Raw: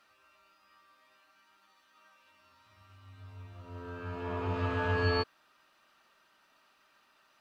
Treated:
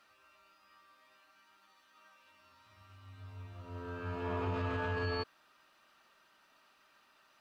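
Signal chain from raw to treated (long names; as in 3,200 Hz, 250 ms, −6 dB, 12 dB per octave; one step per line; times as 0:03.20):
brickwall limiter −27 dBFS, peak gain reduction 9 dB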